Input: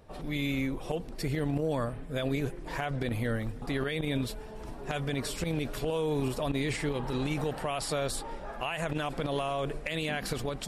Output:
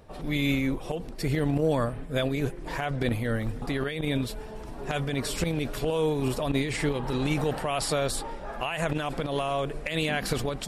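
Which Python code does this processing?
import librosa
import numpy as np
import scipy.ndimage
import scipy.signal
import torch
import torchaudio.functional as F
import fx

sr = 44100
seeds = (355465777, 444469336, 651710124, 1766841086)

y = fx.am_noise(x, sr, seeds[0], hz=5.7, depth_pct=60)
y = F.gain(torch.from_numpy(y), 6.5).numpy()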